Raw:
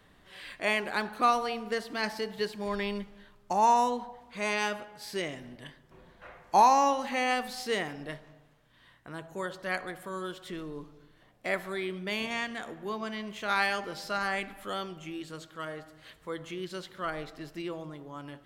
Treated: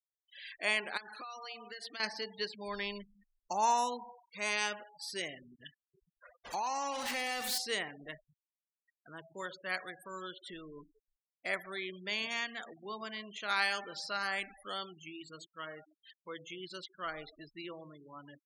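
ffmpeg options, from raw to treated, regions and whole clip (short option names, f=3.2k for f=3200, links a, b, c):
-filter_complex "[0:a]asettb=1/sr,asplit=3[a][b][c];[a]atrim=end=0.974[d];[b]atrim=start=0.97:end=2,asetpts=PTS-STARTPTS,afade=t=in:d=0.004:c=qsin,afade=t=out:st=1.026:d=0.004:c=qsin,highpass=200,tiltshelf=f=800:g=-4,acompressor=threshold=-36dB:ratio=16:attack=3.2:release=140:knee=1:detection=peak[e];[c]atrim=start=1.996[f];[d][e]acrossfade=d=0.004:c1=hsin:c2=qsin[g];[g][f]acrossfade=d=0.004:c1=qsin:c2=hsin,asettb=1/sr,asplit=3[h][i][j];[h]atrim=end=6.444[k];[i]atrim=start=6.44:end=7.58,asetpts=PTS-STARTPTS,afade=t=in:d=0.004:c=qsin,afade=t=out:st=1.136:d=0.004:c=qsin,aeval=exprs='val(0)+0.5*0.0501*sgn(val(0))':c=same,agate=range=-33dB:threshold=-27dB:ratio=3:release=100:detection=peak,acompressor=threshold=-30dB:ratio=3:attack=3.2:release=140:knee=1:detection=peak[l];[j]atrim=start=7.576[m];[k][l]acrossfade=d=0.004:c1=hsin:c2=qsin[n];[n][m]acrossfade=d=0.004:c1=qsin:c2=hsin,highshelf=f=2.4k:g=10,afftfilt=real='re*gte(hypot(re,im),0.0158)':imag='im*gte(hypot(re,im),0.0158)':win_size=1024:overlap=0.75,lowshelf=f=350:g=-6,volume=-6.5dB"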